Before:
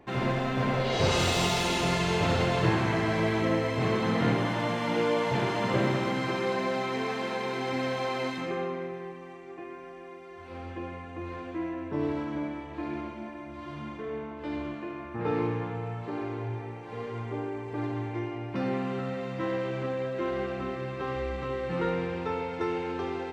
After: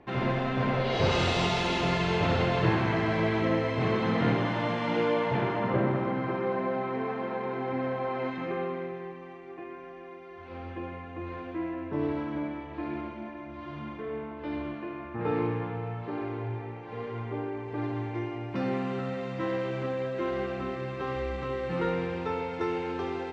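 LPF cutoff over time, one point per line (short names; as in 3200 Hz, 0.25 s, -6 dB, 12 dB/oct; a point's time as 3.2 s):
4.95 s 4100 Hz
5.87 s 1500 Hz
8.07 s 1500 Hz
8.83 s 3800 Hz
17.52 s 3800 Hz
18.53 s 7800 Hz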